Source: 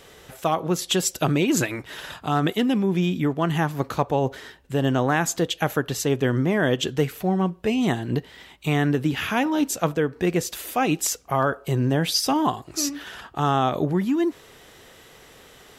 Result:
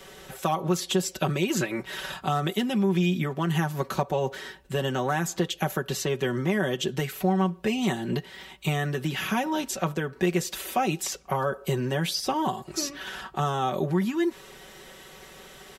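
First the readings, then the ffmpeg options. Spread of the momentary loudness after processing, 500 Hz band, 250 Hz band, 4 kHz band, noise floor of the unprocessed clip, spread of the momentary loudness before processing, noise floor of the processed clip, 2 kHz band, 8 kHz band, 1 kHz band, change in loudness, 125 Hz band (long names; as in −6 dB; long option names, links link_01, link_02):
9 LU, −3.5 dB, −4.5 dB, −3.5 dB, −50 dBFS, 6 LU, −49 dBFS, −3.5 dB, −5.5 dB, −3.0 dB, −4.0 dB, −3.5 dB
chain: -filter_complex "[0:a]acrossover=split=100|920|4800[link_01][link_02][link_03][link_04];[link_01]acompressor=threshold=-51dB:ratio=4[link_05];[link_02]acompressor=threshold=-26dB:ratio=4[link_06];[link_03]acompressor=threshold=-34dB:ratio=4[link_07];[link_04]acompressor=threshold=-38dB:ratio=4[link_08];[link_05][link_06][link_07][link_08]amix=inputs=4:normalize=0,aecho=1:1:5.3:0.75"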